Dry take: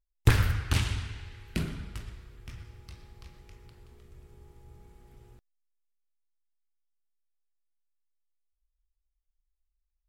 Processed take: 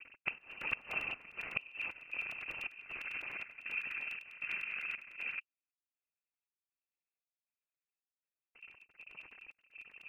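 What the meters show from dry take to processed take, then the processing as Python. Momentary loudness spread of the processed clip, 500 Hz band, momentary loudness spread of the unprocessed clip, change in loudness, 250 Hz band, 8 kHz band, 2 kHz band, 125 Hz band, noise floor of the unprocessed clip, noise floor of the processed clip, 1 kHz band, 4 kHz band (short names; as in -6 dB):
16 LU, -12.0 dB, 23 LU, -9.5 dB, -20.5 dB, under -20 dB, +3.0 dB, under -30 dB, -81 dBFS, under -85 dBFS, -7.5 dB, -9.5 dB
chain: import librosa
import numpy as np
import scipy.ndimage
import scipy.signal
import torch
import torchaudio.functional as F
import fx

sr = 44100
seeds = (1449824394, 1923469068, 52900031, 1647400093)

y = x + 0.5 * 10.0 ** (-33.5 / 20.0) * np.sign(x)
y = fx.vowel_filter(y, sr, vowel='u')
y = fx.peak_eq(y, sr, hz=460.0, db=7.0, octaves=2.4)
y = fx.noise_vocoder(y, sr, seeds[0], bands=8)
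y = fx.freq_invert(y, sr, carrier_hz=2900)
y = fx.step_gate(y, sr, bpm=197, pattern='xxxxx...xx', floor_db=-12.0, edge_ms=4.5)
y = fx.gate_flip(y, sr, shuts_db=-30.0, range_db=-24)
y = fx.buffer_crackle(y, sr, first_s=0.41, period_s=0.1, block=128, kind='repeat')
y = y * 10.0 ** (10.0 / 20.0)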